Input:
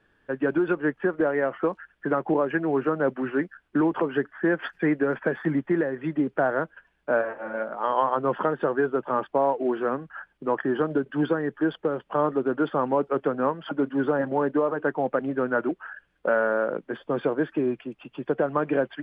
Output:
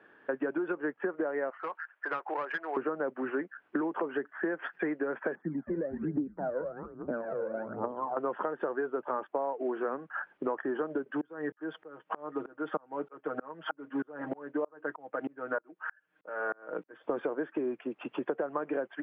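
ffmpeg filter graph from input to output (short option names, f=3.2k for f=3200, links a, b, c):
-filter_complex "[0:a]asettb=1/sr,asplit=3[a][b][c];[a]atrim=end=1.504[d];[b]atrim=start=1.5:end=2.77,asetpts=PTS-STARTPTS,afade=t=in:d=0.004:c=qsin,afade=t=out:st=1.266:d=0.004:c=qsin,highpass=1.1k,adynamicsmooth=sensitivity=4:basefreq=2.4k,aeval=exprs='clip(val(0),-1,0.0211)':c=same[e];[c]atrim=start=2.766[f];[d][e]acrossfade=d=0.004:c1=hsin:c2=qsin[g];[g][f]acrossfade=d=0.004:c1=qsin:c2=hsin,asettb=1/sr,asplit=3[h][i][j];[h]atrim=end=5.354[k];[i]atrim=start=5.35:end=8.17,asetpts=PTS-STARTPTS,afade=t=in:d=0.004:c=qsin,afade=t=out:st=2.816:d=0.004:c=qsin,bandpass=f=190:t=q:w=1.5,asplit=5[l][m][n][o][p];[m]adelay=220,afreqshift=-110,volume=-8dB[q];[n]adelay=440,afreqshift=-220,volume=-17.9dB[r];[o]adelay=660,afreqshift=-330,volume=-27.8dB[s];[p]adelay=880,afreqshift=-440,volume=-37.7dB[t];[l][q][r][s][t]amix=inputs=5:normalize=0,atrim=end_sample=124362,aphaser=in_gain=1:out_gain=1:delay=2.1:decay=0.73:speed=1.2:type=triangular[u];[j]atrim=start=8.166[v];[k][u]acrossfade=d=0.004:c1=hsin:c2=qsin[w];[w][v]acrossfade=d=0.004:c1=qsin:c2=hsin,asettb=1/sr,asplit=3[x][y][z];[x]atrim=end=11.214[aa];[y]atrim=start=11.21:end=17.04,asetpts=PTS-STARTPTS,afade=t=in:d=0.004:c=qsin,afade=t=out:st=5.826:d=0.004:c=qsin,equalizer=f=430:t=o:w=2.4:g=-4,aecho=1:1:6.4:0.64,atrim=end_sample=257103,aeval=exprs='val(0)*pow(10,-35*if(lt(mod(-3.2*n/s,1),2*abs(-3.2)/1000),1-mod(-3.2*n/s,1)/(2*abs(-3.2)/1000),(mod(-3.2*n/s,1)-2*abs(-3.2)/1000)/(1-2*abs(-3.2)/1000))/20)':c=same[ab];[z]atrim=start=17.036[ac];[aa][ab]acrossfade=d=0.004:c1=hsin:c2=qsin[ad];[ad][ac]acrossfade=d=0.004:c1=qsin:c2=hsin,highpass=300,acompressor=threshold=-39dB:ratio=6,lowpass=2k,volume=8.5dB"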